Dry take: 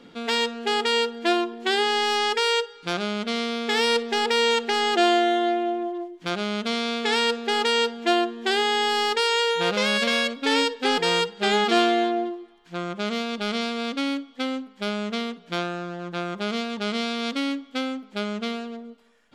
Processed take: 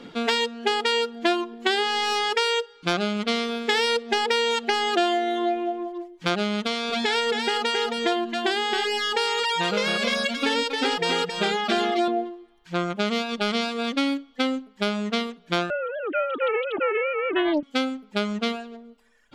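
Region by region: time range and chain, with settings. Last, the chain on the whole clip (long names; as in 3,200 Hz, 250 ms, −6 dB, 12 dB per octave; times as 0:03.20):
0:06.63–0:12.08: downward compressor 3 to 1, threshold −24 dBFS + single-tap delay 269 ms −3.5 dB
0:15.70–0:17.63: three sine waves on the formant tracks + highs frequency-modulated by the lows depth 0.54 ms
whole clip: reverb reduction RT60 1.2 s; high-shelf EQ 9,400 Hz −4 dB; downward compressor, threshold −25 dBFS; level +6.5 dB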